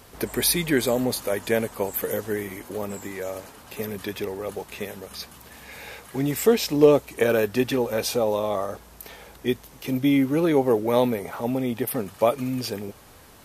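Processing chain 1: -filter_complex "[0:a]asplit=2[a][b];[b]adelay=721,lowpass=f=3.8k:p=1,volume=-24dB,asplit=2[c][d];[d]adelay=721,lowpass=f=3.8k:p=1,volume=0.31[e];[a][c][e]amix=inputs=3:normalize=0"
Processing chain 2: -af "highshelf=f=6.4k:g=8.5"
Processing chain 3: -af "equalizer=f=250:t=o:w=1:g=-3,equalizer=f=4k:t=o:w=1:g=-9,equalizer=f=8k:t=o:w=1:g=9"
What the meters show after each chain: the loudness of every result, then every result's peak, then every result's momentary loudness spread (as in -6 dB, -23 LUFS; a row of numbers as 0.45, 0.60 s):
-24.5, -23.5, -25.0 LUFS; -3.5, -2.0, -4.5 dBFS; 17, 17, 18 LU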